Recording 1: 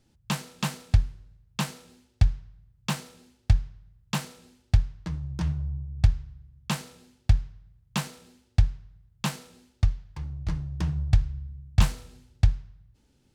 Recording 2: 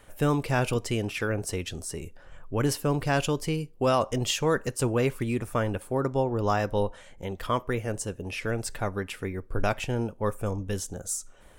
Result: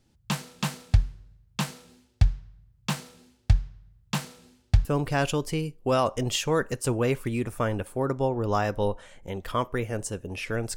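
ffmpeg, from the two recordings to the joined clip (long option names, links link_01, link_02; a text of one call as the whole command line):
ffmpeg -i cue0.wav -i cue1.wav -filter_complex "[0:a]apad=whole_dur=10.76,atrim=end=10.76,atrim=end=4.852[link_01];[1:a]atrim=start=2.798:end=8.71[link_02];[link_01][link_02]acrossfade=duration=0.004:curve1=hsin:curve2=hsin" out.wav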